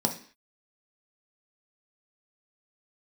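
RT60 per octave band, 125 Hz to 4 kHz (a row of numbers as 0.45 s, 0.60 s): 0.35 s, 0.45 s, 0.45 s, 0.45 s, 0.55 s, no reading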